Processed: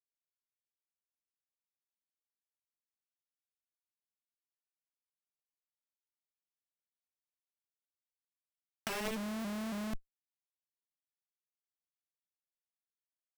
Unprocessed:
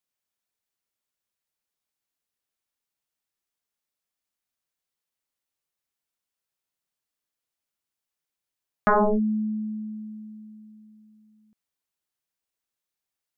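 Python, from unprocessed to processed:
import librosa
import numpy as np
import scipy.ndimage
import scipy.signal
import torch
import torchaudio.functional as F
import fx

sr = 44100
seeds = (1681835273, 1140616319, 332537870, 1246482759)

y = np.r_[np.sort(x[:len(x) // 16 * 16].reshape(-1, 16), axis=1).ravel(), x[len(x) // 16 * 16:]]
y = fx.schmitt(y, sr, flips_db=-32.0)
y = fx.over_compress(y, sr, threshold_db=-40.0, ratio=-0.5)
y = fx.vibrato_shape(y, sr, shape='saw_up', rate_hz=3.6, depth_cents=100.0)
y = F.gain(torch.from_numpy(y), 5.0).numpy()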